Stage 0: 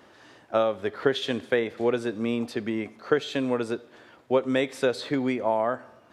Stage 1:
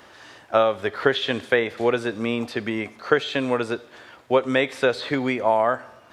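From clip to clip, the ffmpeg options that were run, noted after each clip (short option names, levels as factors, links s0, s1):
-filter_complex "[0:a]acrossover=split=3800[s0][s1];[s1]acompressor=threshold=0.00282:ratio=4:attack=1:release=60[s2];[s0][s2]amix=inputs=2:normalize=0,equalizer=f=250:w=0.48:g=-7.5,volume=2.66"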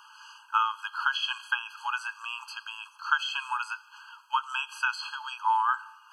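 -af "afftfilt=real='re*eq(mod(floor(b*sr/1024/830),2),1)':imag='im*eq(mod(floor(b*sr/1024/830),2),1)':win_size=1024:overlap=0.75"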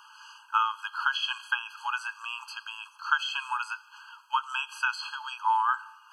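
-af anull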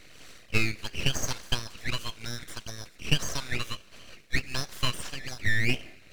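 -af "aeval=exprs='abs(val(0))':c=same,volume=1.41"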